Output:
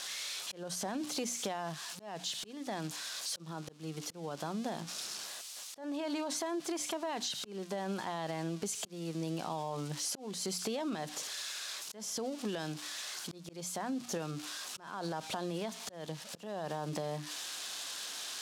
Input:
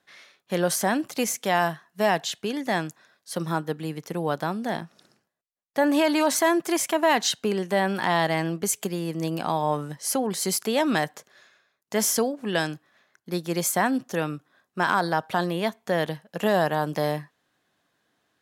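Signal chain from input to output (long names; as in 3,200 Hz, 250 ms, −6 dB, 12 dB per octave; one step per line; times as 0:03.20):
spike at every zero crossing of −22.5 dBFS
low-pass filter 5,700 Hz 12 dB per octave
parametric band 1,900 Hz −6.5 dB 0.79 octaves
mains-hum notches 60/120/180/240/300 Hz
brickwall limiter −19.5 dBFS, peak gain reduction 9.5 dB
volume swells 489 ms
downward compressor, threshold −32 dBFS, peak gain reduction 9 dB
level −1.5 dB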